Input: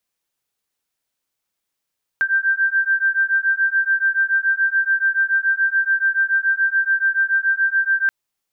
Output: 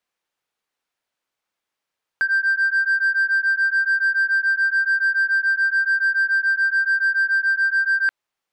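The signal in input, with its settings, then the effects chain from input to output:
beating tones 1570 Hz, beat 7 Hz, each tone -18.5 dBFS 5.88 s
overdrive pedal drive 10 dB, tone 1700 Hz, clips at -12 dBFS

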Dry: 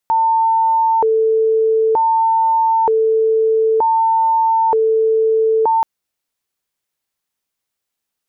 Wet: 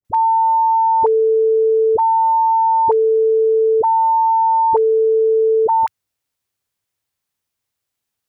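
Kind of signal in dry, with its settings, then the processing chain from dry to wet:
siren hi-lo 443–899 Hz 0.54/s sine -11 dBFS 5.73 s
bell 98 Hz +12 dB 0.7 oct; dispersion highs, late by 49 ms, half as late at 640 Hz

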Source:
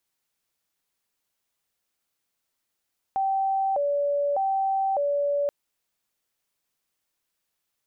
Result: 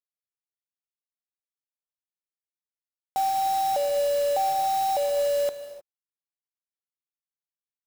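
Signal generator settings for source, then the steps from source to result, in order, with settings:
siren hi-lo 573–776 Hz 0.83/s sine -21.5 dBFS 2.33 s
bit-crush 6-bit; non-linear reverb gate 0.33 s flat, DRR 8.5 dB; clock jitter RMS 0.024 ms

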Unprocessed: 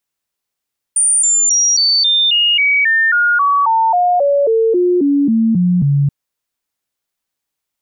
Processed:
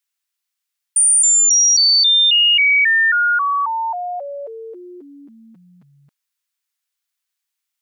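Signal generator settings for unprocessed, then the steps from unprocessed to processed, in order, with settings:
stepped sine 9070 Hz down, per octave 3, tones 19, 0.27 s, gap 0.00 s -9.5 dBFS
HPF 1400 Hz 12 dB/oct

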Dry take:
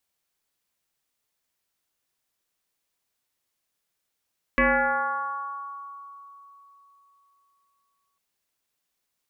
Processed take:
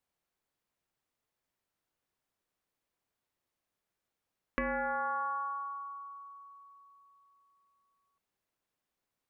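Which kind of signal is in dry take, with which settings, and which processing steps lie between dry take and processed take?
FM tone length 3.60 s, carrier 1120 Hz, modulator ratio 0.26, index 3.9, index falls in 3.15 s exponential, decay 3.60 s, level -16 dB
high shelf 2300 Hz -12 dB; compressor 10:1, threshold -31 dBFS

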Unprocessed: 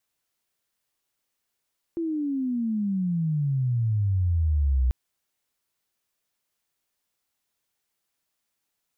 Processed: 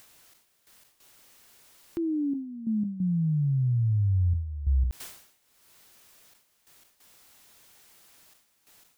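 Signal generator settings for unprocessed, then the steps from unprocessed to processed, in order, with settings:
chirp logarithmic 340 Hz -> 61 Hz -25 dBFS -> -18.5 dBFS 2.94 s
upward compressor, threshold -38 dBFS; step gate "xx..x.xxxxxx" 90 bpm -12 dB; sustainer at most 85 dB/s

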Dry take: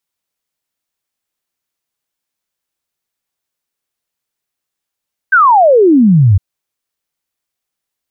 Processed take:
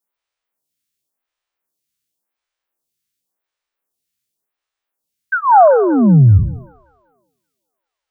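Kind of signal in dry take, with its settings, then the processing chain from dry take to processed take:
log sweep 1600 Hz -> 89 Hz 1.06 s -4 dBFS
spectral trails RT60 0.70 s; thinning echo 0.192 s, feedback 53%, high-pass 260 Hz, level -16 dB; photocell phaser 0.91 Hz

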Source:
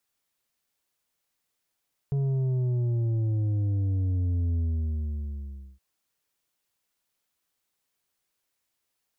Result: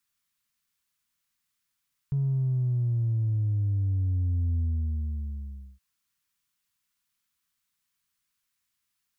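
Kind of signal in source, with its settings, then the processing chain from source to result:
sub drop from 140 Hz, over 3.67 s, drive 6.5 dB, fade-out 1.22 s, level -24 dB
band shelf 500 Hz -12.5 dB

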